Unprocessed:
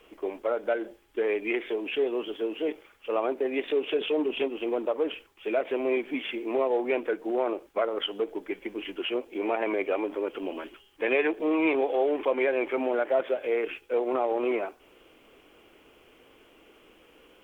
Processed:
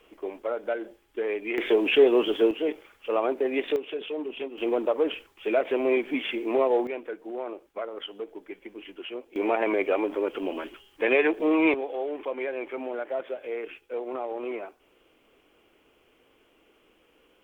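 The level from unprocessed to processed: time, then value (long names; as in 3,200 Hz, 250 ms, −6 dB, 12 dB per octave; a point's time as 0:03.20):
−2 dB
from 0:01.58 +9 dB
from 0:02.51 +2 dB
from 0:03.76 −6 dB
from 0:04.58 +3 dB
from 0:06.87 −7 dB
from 0:09.36 +3 dB
from 0:11.74 −6 dB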